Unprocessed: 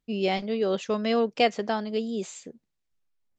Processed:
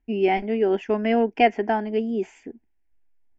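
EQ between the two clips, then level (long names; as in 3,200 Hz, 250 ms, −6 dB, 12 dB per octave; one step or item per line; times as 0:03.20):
high-frequency loss of the air 240 metres
low-shelf EQ 130 Hz +6 dB
phaser with its sweep stopped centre 800 Hz, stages 8
+8.0 dB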